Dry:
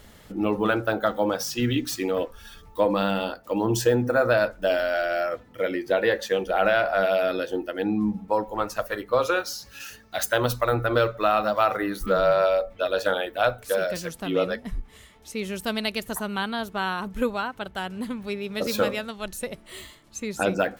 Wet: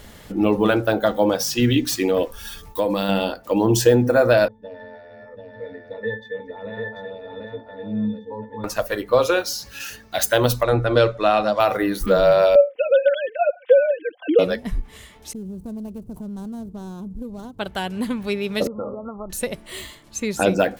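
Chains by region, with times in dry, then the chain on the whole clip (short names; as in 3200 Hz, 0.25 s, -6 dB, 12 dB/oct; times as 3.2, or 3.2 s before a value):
2.23–3.09 high shelf 4800 Hz +9 dB + compressor 2:1, threshold -26 dBFS + gate with hold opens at -38 dBFS, closes at -45 dBFS
4.48–8.64 octave resonator A, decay 0.19 s + echo 0.738 s -3.5 dB
10.63–11.6 LPF 9000 Hz 24 dB/oct + three-band expander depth 40%
12.55–14.39 sine-wave speech + comb 3.9 ms, depth 86%
15.33–17.59 median filter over 25 samples + EQ curve 200 Hz 0 dB, 1400 Hz -21 dB, 2000 Hz -27 dB, 9600 Hz -7 dB + compressor 4:1, threshold -36 dBFS
18.67–19.3 compressor 4:1, threshold -33 dBFS + brick-wall FIR low-pass 1400 Hz
whole clip: dynamic EQ 1400 Hz, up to -5 dB, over -37 dBFS, Q 1.1; notch 1300 Hz, Q 21; gain +6.5 dB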